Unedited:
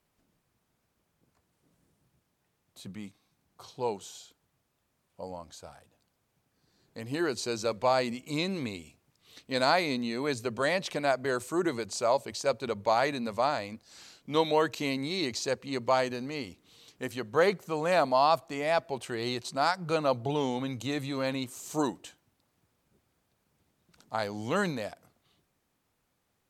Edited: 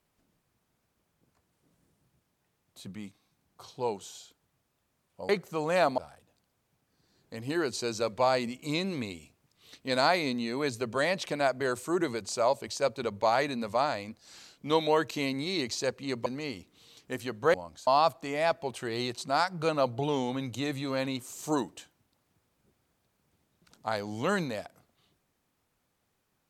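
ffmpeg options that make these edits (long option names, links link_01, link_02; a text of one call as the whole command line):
ffmpeg -i in.wav -filter_complex "[0:a]asplit=6[link_01][link_02][link_03][link_04][link_05][link_06];[link_01]atrim=end=5.292[link_07];[link_02]atrim=start=17.448:end=18.142[link_08];[link_03]atrim=start=5.618:end=15.902[link_09];[link_04]atrim=start=16.168:end=17.452[link_10];[link_05]atrim=start=5.288:end=5.622[link_11];[link_06]atrim=start=18.138[link_12];[link_07][link_08]acrossfade=duration=0.004:curve1=hsin:curve2=hsin[link_13];[link_13][link_09]acrossfade=duration=0.004:curve1=hsin:curve2=hsin[link_14];[link_14][link_10]acrossfade=duration=0.004:curve1=hsin:curve2=hsin[link_15];[link_15][link_11]acrossfade=duration=0.004:curve1=hsin:curve2=hsin[link_16];[link_16][link_12]acrossfade=duration=0.004:curve1=hsin:curve2=hsin" out.wav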